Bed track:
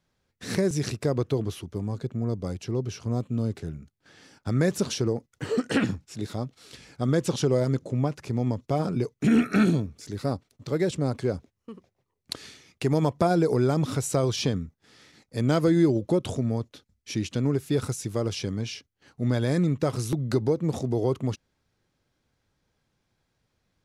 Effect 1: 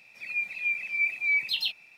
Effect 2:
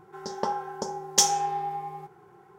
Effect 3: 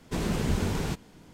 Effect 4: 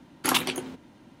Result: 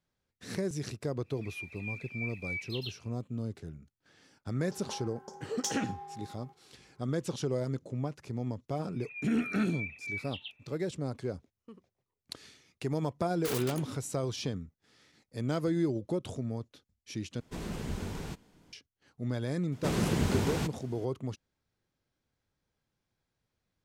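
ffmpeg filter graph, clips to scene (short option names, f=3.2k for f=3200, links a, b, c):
-filter_complex "[1:a]asplit=2[a][b];[3:a]asplit=2[c][d];[0:a]volume=-9dB[e];[b]aresample=8000,aresample=44100[f];[4:a]aeval=exprs='(mod(11.9*val(0)+1,2)-1)/11.9':c=same[g];[d]highpass=73[h];[e]asplit=2[i][j];[i]atrim=end=17.404[k];[c]atrim=end=1.33,asetpts=PTS-STARTPTS,volume=-9.5dB[l];[j]atrim=start=18.726[m];[a]atrim=end=1.97,asetpts=PTS-STARTPTS,volume=-13dB,afade=t=in:d=0.1,afade=t=out:st=1.87:d=0.1,adelay=1210[n];[2:a]atrim=end=2.58,asetpts=PTS-STARTPTS,volume=-15dB,afade=t=in:d=0.004:c=hsin,afade=t=out:st=2.576:d=0.004:c=hsin,adelay=4460[o];[f]atrim=end=1.97,asetpts=PTS-STARTPTS,volume=-13.5dB,afade=t=in:d=0.004:c=hsin,afade=t=out:st=1.966:d=0.004:c=hsin,adelay=8800[p];[g]atrim=end=1.2,asetpts=PTS-STARTPTS,volume=-9.5dB,afade=t=in:d=0.004:c=hsin,afade=t=out:st=1.196:d=0.004:c=hsin,adelay=13200[q];[h]atrim=end=1.33,asetpts=PTS-STARTPTS,volume=-0.5dB,afade=t=in:d=0.004:c=hsin,afade=t=out:st=1.326:d=0.004:c=hsin,adelay=869652S[r];[k][l]acrossfade=d=0.004:c1=hsin:c2=hsin[s];[s][m]acrossfade=d=0.004:c1=hsin:c2=hsin[t];[t][n][o][p][q][r]amix=inputs=6:normalize=0"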